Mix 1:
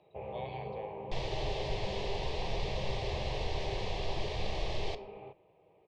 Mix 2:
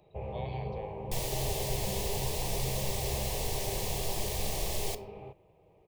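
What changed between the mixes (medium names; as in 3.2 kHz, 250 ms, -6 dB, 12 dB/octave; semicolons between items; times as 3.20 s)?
first sound: remove high-pass 290 Hz 6 dB/octave; master: remove low-pass 4.2 kHz 24 dB/octave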